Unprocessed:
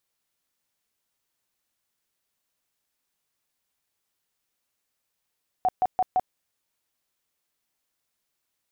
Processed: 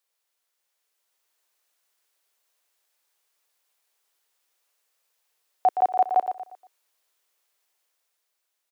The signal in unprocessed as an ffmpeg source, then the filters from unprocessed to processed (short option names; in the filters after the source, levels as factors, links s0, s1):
-f lavfi -i "aevalsrc='0.126*sin(2*PI*742*mod(t,0.17))*lt(mod(t,0.17),27/742)':d=0.68:s=44100"
-filter_complex "[0:a]highpass=f=400:w=0.5412,highpass=f=400:w=1.3066,dynaudnorm=f=180:g=11:m=1.78,asplit=2[s0][s1];[s1]aecho=0:1:118|236|354|472:0.376|0.135|0.0487|0.0175[s2];[s0][s2]amix=inputs=2:normalize=0"